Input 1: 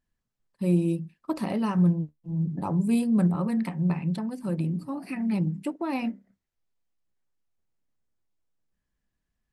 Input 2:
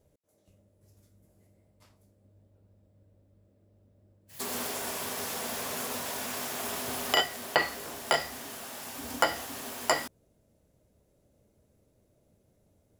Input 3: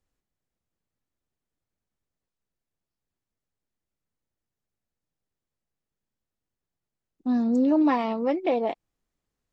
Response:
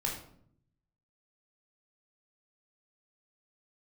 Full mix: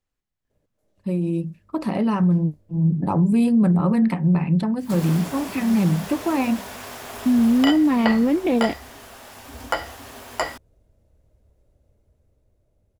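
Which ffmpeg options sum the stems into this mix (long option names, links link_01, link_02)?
-filter_complex "[0:a]adelay=450,volume=2.5dB[link_01];[1:a]asubboost=boost=6:cutoff=71,adelay=500,volume=-3dB[link_02];[2:a]tiltshelf=frequency=1400:gain=-3.5,asubboost=boost=8.5:cutoff=220,volume=0.5dB[link_03];[link_01][link_03]amix=inputs=2:normalize=0,alimiter=limit=-17.5dB:level=0:latency=1:release=42,volume=0dB[link_04];[link_02][link_04]amix=inputs=2:normalize=0,highshelf=frequency=4400:gain=-8.5,dynaudnorm=framelen=330:gausssize=11:maxgain=6dB"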